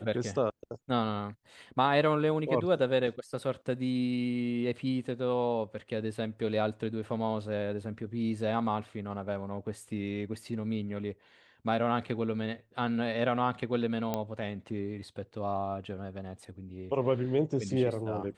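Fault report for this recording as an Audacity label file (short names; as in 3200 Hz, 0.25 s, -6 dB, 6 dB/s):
14.140000	14.140000	pop -17 dBFS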